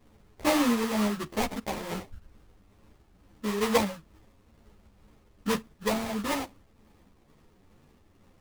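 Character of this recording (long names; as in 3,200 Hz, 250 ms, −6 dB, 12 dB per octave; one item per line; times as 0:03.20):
tremolo triangle 2.2 Hz, depth 40%
aliases and images of a low sample rate 1,500 Hz, jitter 20%
a shimmering, thickened sound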